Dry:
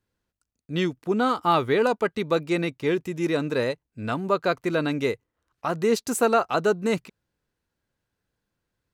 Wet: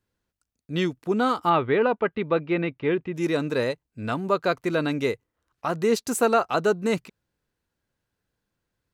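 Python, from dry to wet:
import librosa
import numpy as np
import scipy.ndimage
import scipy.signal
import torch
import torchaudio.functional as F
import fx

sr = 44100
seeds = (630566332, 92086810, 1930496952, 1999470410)

y = fx.lowpass(x, sr, hz=3100.0, slope=24, at=(1.49, 3.13), fade=0.02)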